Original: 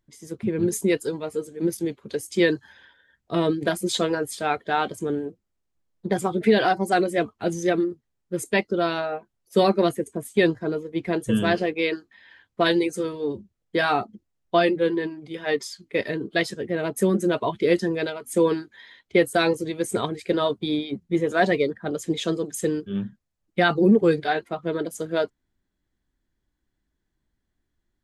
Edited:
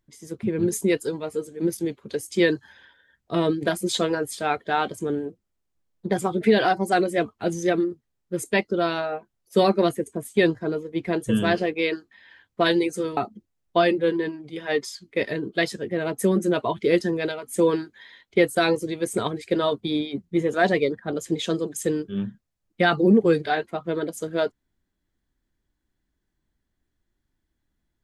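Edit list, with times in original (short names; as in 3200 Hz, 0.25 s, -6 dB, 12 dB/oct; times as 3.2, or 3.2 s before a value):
13.17–13.95 cut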